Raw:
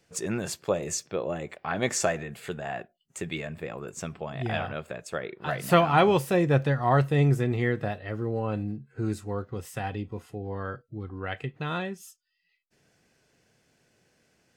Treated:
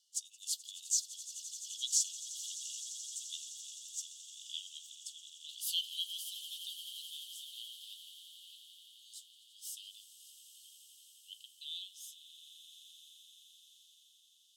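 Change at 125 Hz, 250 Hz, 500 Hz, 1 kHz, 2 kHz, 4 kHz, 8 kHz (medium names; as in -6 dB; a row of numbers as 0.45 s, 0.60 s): under -40 dB, under -40 dB, under -40 dB, under -40 dB, -32.0 dB, +1.5 dB, +1.0 dB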